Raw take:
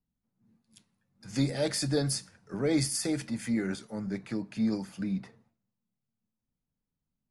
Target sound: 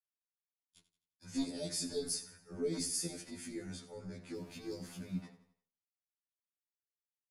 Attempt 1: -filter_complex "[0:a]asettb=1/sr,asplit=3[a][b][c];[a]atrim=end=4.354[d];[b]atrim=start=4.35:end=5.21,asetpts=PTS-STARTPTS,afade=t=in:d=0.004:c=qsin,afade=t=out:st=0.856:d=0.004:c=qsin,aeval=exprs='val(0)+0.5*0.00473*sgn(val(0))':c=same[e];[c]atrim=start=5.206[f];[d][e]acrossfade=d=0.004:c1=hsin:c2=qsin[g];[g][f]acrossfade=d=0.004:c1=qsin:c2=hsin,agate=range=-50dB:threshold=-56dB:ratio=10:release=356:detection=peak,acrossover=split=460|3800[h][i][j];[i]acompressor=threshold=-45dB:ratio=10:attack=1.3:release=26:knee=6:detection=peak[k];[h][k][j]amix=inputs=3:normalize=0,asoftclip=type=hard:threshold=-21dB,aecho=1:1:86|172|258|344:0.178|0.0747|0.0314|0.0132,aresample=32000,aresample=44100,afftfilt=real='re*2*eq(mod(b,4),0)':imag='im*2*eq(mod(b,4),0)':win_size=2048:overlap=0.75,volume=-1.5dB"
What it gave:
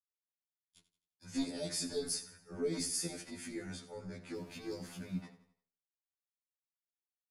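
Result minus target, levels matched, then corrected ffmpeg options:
compressor: peak gain reduction -6 dB
-filter_complex "[0:a]asettb=1/sr,asplit=3[a][b][c];[a]atrim=end=4.354[d];[b]atrim=start=4.35:end=5.21,asetpts=PTS-STARTPTS,afade=t=in:d=0.004:c=qsin,afade=t=out:st=0.856:d=0.004:c=qsin,aeval=exprs='val(0)+0.5*0.00473*sgn(val(0))':c=same[e];[c]atrim=start=5.206[f];[d][e]acrossfade=d=0.004:c1=hsin:c2=qsin[g];[g][f]acrossfade=d=0.004:c1=qsin:c2=hsin,agate=range=-50dB:threshold=-56dB:ratio=10:release=356:detection=peak,acrossover=split=460|3800[h][i][j];[i]acompressor=threshold=-51.5dB:ratio=10:attack=1.3:release=26:knee=6:detection=peak[k];[h][k][j]amix=inputs=3:normalize=0,asoftclip=type=hard:threshold=-21dB,aecho=1:1:86|172|258|344:0.178|0.0747|0.0314|0.0132,aresample=32000,aresample=44100,afftfilt=real='re*2*eq(mod(b,4),0)':imag='im*2*eq(mod(b,4),0)':win_size=2048:overlap=0.75,volume=-1.5dB"

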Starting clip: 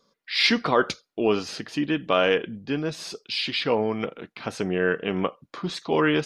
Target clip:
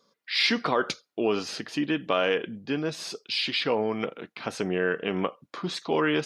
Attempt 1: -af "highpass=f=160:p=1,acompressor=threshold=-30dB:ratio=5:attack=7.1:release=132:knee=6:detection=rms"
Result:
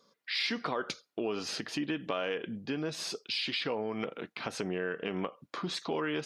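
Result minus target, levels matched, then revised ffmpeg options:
compressor: peak gain reduction +9.5 dB
-af "highpass=f=160:p=1,acompressor=threshold=-18dB:ratio=5:attack=7.1:release=132:knee=6:detection=rms"

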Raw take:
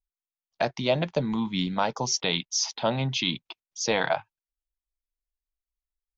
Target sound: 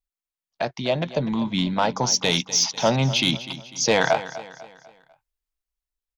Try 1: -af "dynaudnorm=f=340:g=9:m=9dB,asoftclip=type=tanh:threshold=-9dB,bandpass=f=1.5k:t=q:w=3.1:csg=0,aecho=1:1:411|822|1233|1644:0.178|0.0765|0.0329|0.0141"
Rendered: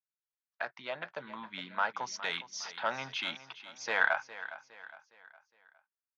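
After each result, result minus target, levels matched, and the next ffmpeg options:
echo 0.163 s late; 2000 Hz band +9.5 dB
-af "dynaudnorm=f=340:g=9:m=9dB,asoftclip=type=tanh:threshold=-9dB,bandpass=f=1.5k:t=q:w=3.1:csg=0,aecho=1:1:248|496|744|992:0.178|0.0765|0.0329|0.0141"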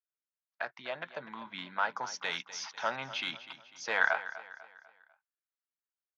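2000 Hz band +9.0 dB
-af "dynaudnorm=f=340:g=9:m=9dB,asoftclip=type=tanh:threshold=-9dB,aecho=1:1:248|496|744|992:0.178|0.0765|0.0329|0.0141"

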